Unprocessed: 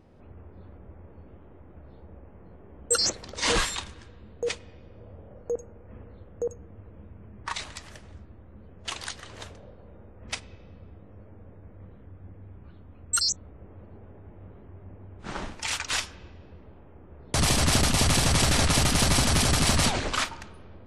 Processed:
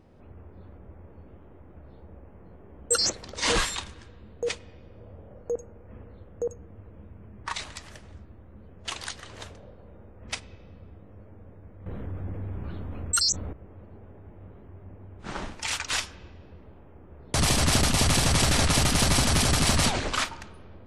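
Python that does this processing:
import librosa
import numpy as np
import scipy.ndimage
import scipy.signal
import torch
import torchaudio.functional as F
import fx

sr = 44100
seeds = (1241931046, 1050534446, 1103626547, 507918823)

y = fx.env_flatten(x, sr, amount_pct=50, at=(11.86, 13.53))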